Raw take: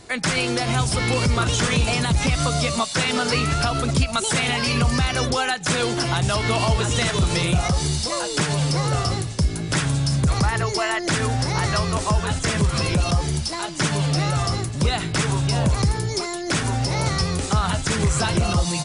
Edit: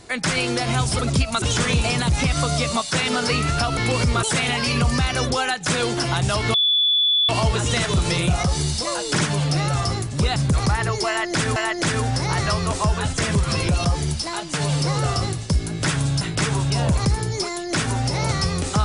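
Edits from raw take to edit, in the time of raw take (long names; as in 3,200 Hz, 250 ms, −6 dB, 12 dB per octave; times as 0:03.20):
0:00.99–0:01.45: swap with 0:03.80–0:04.23
0:06.54: insert tone 3,450 Hz −15 dBFS 0.75 s
0:08.43–0:10.10: swap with 0:13.80–0:14.98
0:10.82–0:11.30: repeat, 2 plays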